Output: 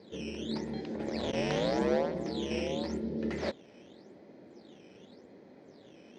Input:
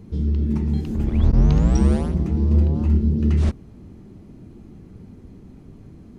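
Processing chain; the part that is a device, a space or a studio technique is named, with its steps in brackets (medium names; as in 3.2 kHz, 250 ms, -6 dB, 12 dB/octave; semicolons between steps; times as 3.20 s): circuit-bent sampling toy (decimation with a swept rate 9×, swing 160% 0.87 Hz; cabinet simulation 450–5100 Hz, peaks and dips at 550 Hz +9 dB, 1.2 kHz -8 dB, 1.9 kHz +4 dB, 2.8 kHz -7 dB)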